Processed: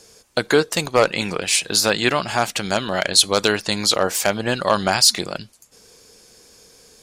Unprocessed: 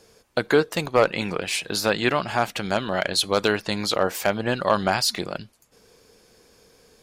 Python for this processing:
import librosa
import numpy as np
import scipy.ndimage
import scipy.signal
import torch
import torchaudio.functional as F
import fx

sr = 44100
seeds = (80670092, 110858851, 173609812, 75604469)

y = fx.peak_eq(x, sr, hz=7600.0, db=10.0, octaves=1.8)
y = y * 10.0 ** (2.0 / 20.0)